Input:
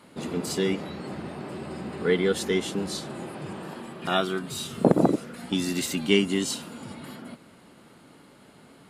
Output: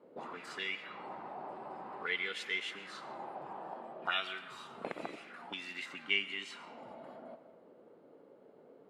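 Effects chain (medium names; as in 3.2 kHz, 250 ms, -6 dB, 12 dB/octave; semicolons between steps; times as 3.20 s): 5.54–6.78 s: treble shelf 2.7 kHz -8 dB; auto-wah 440–2400 Hz, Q 3.3, up, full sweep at -24 dBFS; algorithmic reverb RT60 1.5 s, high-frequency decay 0.6×, pre-delay 70 ms, DRR 13 dB; trim +2 dB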